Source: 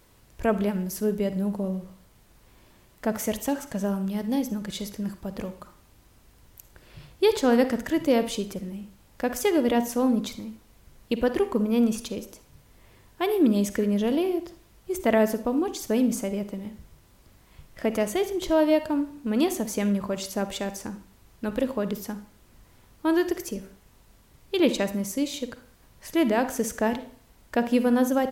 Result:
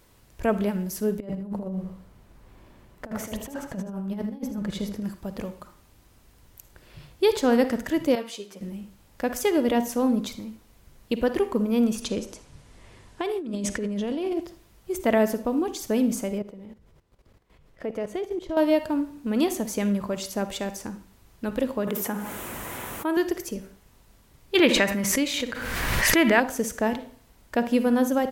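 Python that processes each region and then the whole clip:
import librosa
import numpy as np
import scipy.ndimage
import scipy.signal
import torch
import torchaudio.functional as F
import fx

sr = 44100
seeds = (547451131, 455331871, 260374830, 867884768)

y = fx.chain(x, sr, fx.high_shelf(hz=2500.0, db=-11.5),
    fx.over_compress(threshold_db=-31.0, ratio=-0.5),
    fx.echo_single(ms=79, db=-9.0), at=(1.2, 5.04))
y = fx.chain(y, sr, fx.highpass(hz=780.0, slope=6),
    fx.high_shelf(hz=7800.0, db=-7.0),
    fx.ensemble(), at=(8.15, 8.61))
y = fx.chain(y, sr, fx.lowpass(hz=9800.0, slope=24),
    fx.over_compress(threshold_db=-28.0, ratio=-1.0),
    fx.clip_hard(threshold_db=-19.0), at=(12.02, 14.41))
y = fx.chain(y, sr, fx.lowpass(hz=3100.0, slope=6),
    fx.peak_eq(hz=460.0, db=7.0, octaves=0.45),
    fx.level_steps(step_db=14), at=(16.38, 18.57))
y = fx.chain(y, sr, fx.highpass(hz=470.0, slope=6),
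    fx.peak_eq(hz=4700.0, db=-13.0, octaves=0.85),
    fx.env_flatten(amount_pct=70), at=(21.87, 23.17))
y = fx.chain(y, sr, fx.peak_eq(hz=1900.0, db=11.5, octaves=1.5),
    fx.pre_swell(db_per_s=27.0), at=(24.55, 26.4))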